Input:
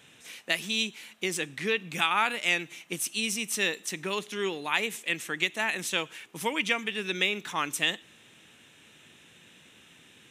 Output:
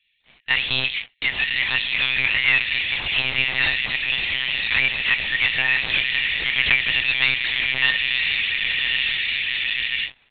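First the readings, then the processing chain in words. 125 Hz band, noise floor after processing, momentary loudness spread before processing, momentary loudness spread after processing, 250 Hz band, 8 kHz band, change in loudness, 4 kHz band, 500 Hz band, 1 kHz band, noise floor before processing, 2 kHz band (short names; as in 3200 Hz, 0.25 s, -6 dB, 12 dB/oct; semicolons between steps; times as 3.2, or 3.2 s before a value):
+6.5 dB, -60 dBFS, 7 LU, 4 LU, -5.0 dB, under -40 dB, +9.5 dB, +11.5 dB, -6.5 dB, -3.5 dB, -57 dBFS, +12.0 dB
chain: on a send: diffused feedback echo 1.059 s, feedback 62%, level -12 dB; on the sum: power-law curve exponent 0.5; gate with hold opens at -21 dBFS; FFT band-reject 130–1700 Hz; tilt shelf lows -6 dB, about 1200 Hz; sample leveller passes 3; high shelf 2200 Hz -7.5 dB; comb 4.3 ms, depth 58%; monotone LPC vocoder at 8 kHz 130 Hz; gain -5.5 dB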